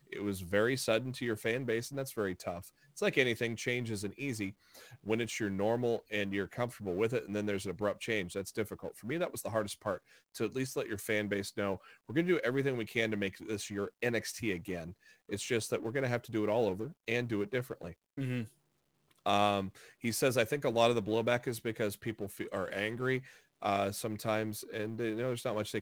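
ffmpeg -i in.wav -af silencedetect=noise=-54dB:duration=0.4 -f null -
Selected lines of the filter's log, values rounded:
silence_start: 18.50
silence_end: 19.11 | silence_duration: 0.61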